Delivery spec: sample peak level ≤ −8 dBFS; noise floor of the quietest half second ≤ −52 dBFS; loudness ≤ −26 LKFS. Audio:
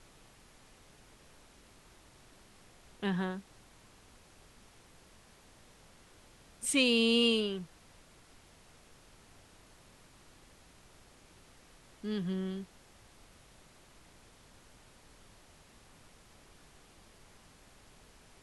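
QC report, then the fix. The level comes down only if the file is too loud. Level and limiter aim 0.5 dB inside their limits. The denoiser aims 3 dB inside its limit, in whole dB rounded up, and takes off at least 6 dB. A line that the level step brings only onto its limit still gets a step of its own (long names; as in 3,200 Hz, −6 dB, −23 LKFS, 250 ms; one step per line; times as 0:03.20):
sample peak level −16.0 dBFS: in spec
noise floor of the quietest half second −59 dBFS: in spec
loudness −31.0 LKFS: in spec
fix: no processing needed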